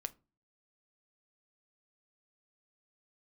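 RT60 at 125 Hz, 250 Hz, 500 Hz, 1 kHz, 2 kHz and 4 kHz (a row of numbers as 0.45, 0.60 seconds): 0.55, 0.50, 0.35, 0.30, 0.20, 0.20 seconds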